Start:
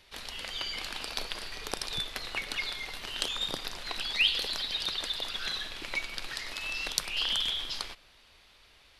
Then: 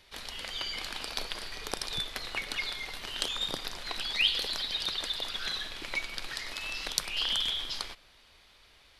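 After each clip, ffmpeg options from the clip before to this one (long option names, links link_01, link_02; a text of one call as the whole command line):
ffmpeg -i in.wav -af "bandreject=frequency=2700:width=25" out.wav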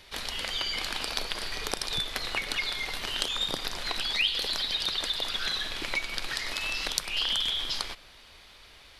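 ffmpeg -i in.wav -af "acompressor=threshold=-36dB:ratio=2,volume=7dB" out.wav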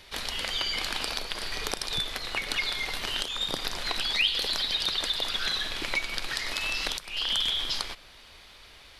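ffmpeg -i in.wav -af "alimiter=limit=-12.5dB:level=0:latency=1:release=397,volume=1.5dB" out.wav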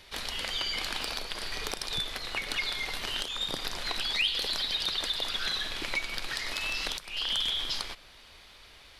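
ffmpeg -i in.wav -af "asoftclip=type=tanh:threshold=-14.5dB,volume=-2dB" out.wav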